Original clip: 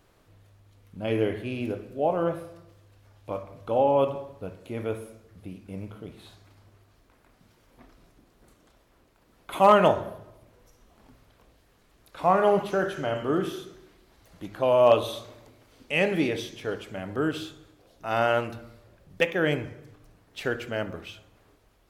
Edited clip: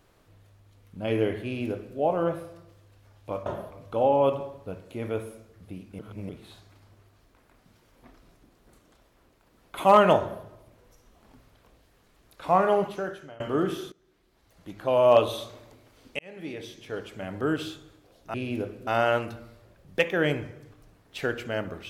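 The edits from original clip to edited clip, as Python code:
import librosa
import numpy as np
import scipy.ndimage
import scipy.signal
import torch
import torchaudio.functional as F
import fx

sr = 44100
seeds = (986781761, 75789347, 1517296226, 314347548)

y = fx.edit(x, sr, fx.duplicate(start_s=1.44, length_s=0.53, to_s=18.09),
    fx.reverse_span(start_s=5.74, length_s=0.3),
    fx.duplicate(start_s=9.94, length_s=0.25, to_s=3.46),
    fx.fade_out_to(start_s=12.32, length_s=0.83, floor_db=-24.0),
    fx.fade_in_from(start_s=13.67, length_s=1.12, floor_db=-21.0),
    fx.fade_in_span(start_s=15.94, length_s=1.12), tone=tone)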